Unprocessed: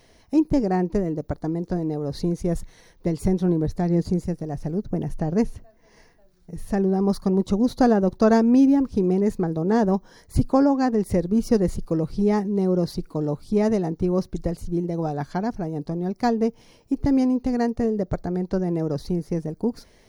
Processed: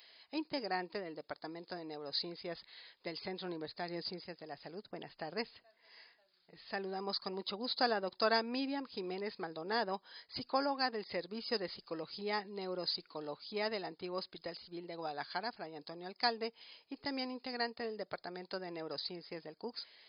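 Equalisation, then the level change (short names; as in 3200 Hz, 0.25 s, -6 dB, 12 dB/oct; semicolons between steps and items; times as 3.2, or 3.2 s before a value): brick-wall FIR low-pass 5100 Hz; differentiator; low shelf 240 Hz -9 dB; +9.5 dB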